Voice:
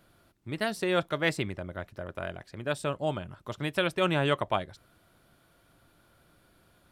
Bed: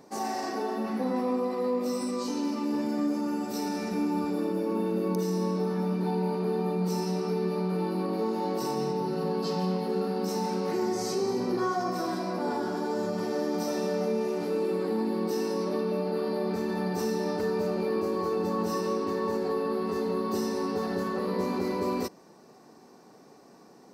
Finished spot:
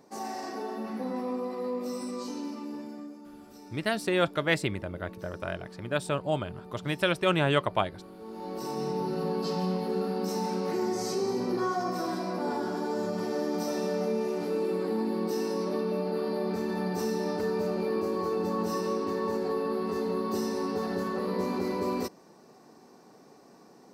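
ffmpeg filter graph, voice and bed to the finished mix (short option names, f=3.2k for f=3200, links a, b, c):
-filter_complex "[0:a]adelay=3250,volume=1.5dB[a];[1:a]volume=12.5dB,afade=t=out:st=2.21:d=0.97:silence=0.211349,afade=t=in:st=8.19:d=0.79:silence=0.141254[b];[a][b]amix=inputs=2:normalize=0"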